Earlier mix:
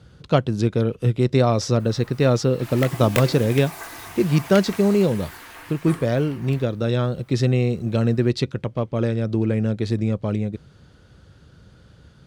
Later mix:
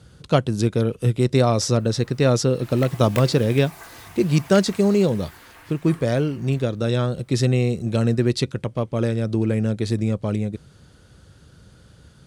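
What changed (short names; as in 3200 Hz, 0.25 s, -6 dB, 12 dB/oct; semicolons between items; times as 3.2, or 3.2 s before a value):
speech: add bell 9600 Hz +11 dB 1.1 oct; background -6.0 dB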